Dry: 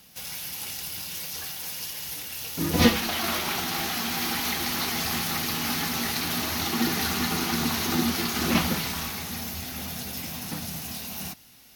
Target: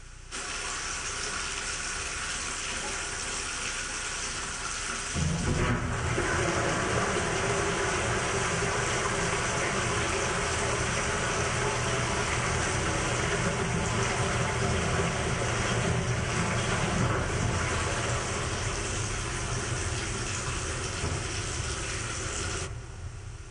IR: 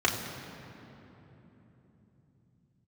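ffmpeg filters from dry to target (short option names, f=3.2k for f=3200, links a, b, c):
-filter_complex "[0:a]acompressor=threshold=-28dB:ratio=6,asplit=2[a][b];[1:a]atrim=start_sample=2205,lowpass=3.3k[c];[b][c]afir=irnorm=-1:irlink=0,volume=-14.5dB[d];[a][d]amix=inputs=2:normalize=0,aeval=exprs='val(0)+0.00562*(sin(2*PI*60*n/s)+sin(2*PI*2*60*n/s)/2+sin(2*PI*3*60*n/s)/3+sin(2*PI*4*60*n/s)/4+sin(2*PI*5*60*n/s)/5)':c=same,equalizer=f=1.6k:w=0.46:g=3.5,asetrate=22050,aresample=44100"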